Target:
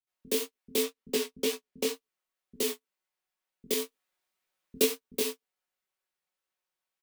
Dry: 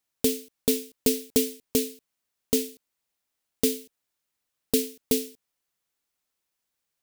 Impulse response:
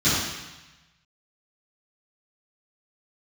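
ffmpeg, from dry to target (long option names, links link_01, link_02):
-filter_complex "[0:a]aeval=exprs='val(0)+0.5*0.0237*sgn(val(0))':channel_layout=same,asettb=1/sr,asplit=3[link_01][link_02][link_03];[link_01]atrim=end=0.754[link_04];[link_02]atrim=start=0.75:end=1.87,asetpts=PTS-STARTPTS,afade=type=in:duration=0.004:curve=qsin,afade=type=out:start_time=1.116:duration=0.004:curve=qsin,highshelf=frequency=8400:gain=-7.5[link_05];[link_03]atrim=start=1.866[link_06];[link_04][link_05]acrossfade=duration=0.004:curve1=hsin:curve2=qsin[link_07];[link_07][link_06]acrossfade=duration=0.004:curve1=qsin:curve2=hsin,agate=range=-54dB:threshold=-25dB:ratio=16:detection=peak,aecho=1:1:5.4:0.93,acrossover=split=390|3200[link_08][link_09][link_10];[link_09]acontrast=83[link_11];[link_08][link_11][link_10]amix=inputs=3:normalize=0,alimiter=limit=-14dB:level=0:latency=1:release=244,asplit=3[link_12][link_13][link_14];[link_12]afade=type=out:start_time=3.79:duration=0.02[link_15];[link_13]acontrast=38,afade=type=in:start_time=3.79:duration=0.02,afade=type=out:start_time=4.76:duration=0.02[link_16];[link_14]afade=type=in:start_time=4.76:duration=0.02[link_17];[link_15][link_16][link_17]amix=inputs=3:normalize=0,flanger=delay=16.5:depth=6.4:speed=2,acrossover=split=160[link_18][link_19];[link_19]adelay=70[link_20];[link_18][link_20]amix=inputs=2:normalize=0,volume=2dB"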